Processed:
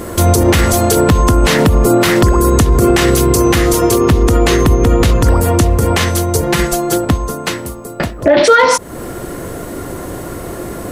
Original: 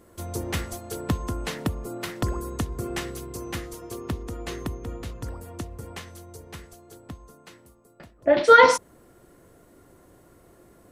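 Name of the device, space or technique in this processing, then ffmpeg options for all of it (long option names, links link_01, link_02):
loud club master: -filter_complex "[0:a]asettb=1/sr,asplit=3[link_01][link_02][link_03];[link_01]atrim=end=6.424[link_04];[link_02]atrim=start=6.42:end=7.05,asetpts=PTS-STARTPTS,afade=type=in:duration=0.004:curve=qsin,afade=type=out:start_time=0.626:duration=0.004:curve=qsin,aecho=1:1:5.8:0.98,atrim=end_sample=27783[link_05];[link_03]atrim=start=7.046[link_06];[link_04][link_05]acrossfade=duration=0.004:curve1=hsin:curve2=qsin[link_07];[link_07][link_06]acrossfade=duration=0.004:curve1=qsin:curve2=hsin,acompressor=threshold=-31dB:ratio=2.5,asoftclip=type=hard:threshold=-20dB,alimiter=level_in=30.5dB:limit=-1dB:release=50:level=0:latency=1,volume=-1dB"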